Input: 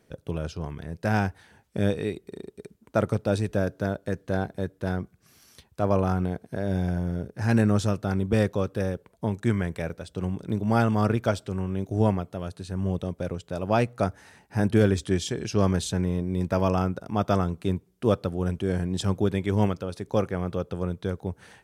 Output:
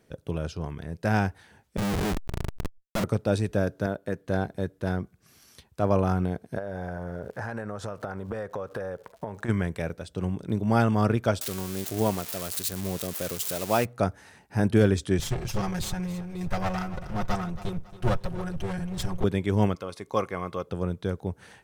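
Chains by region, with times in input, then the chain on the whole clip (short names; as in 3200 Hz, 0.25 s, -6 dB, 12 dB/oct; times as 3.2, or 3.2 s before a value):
1.77–3.04 bell 190 Hz +7 dB 0.47 oct + Schmitt trigger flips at -31.5 dBFS + backwards sustainer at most 110 dB/s
3.86–4.27 HPF 150 Hz 6 dB/oct + bell 5800 Hz -5.5 dB 1.5 oct
6.57–9.48 band shelf 920 Hz +12 dB 2.3 oct + crackle 190/s -46 dBFS + compressor 16:1, threshold -29 dBFS
11.41–13.85 switching spikes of -20.5 dBFS + low shelf 170 Hz -10 dB
15.19–19.24 minimum comb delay 5.5 ms + resonant low shelf 150 Hz +10.5 dB, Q 1.5 + feedback echo 0.276 s, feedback 36%, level -15 dB
19.75–20.67 low shelf 290 Hz -10 dB + small resonant body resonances 1100/2100 Hz, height 13 dB
whole clip: dry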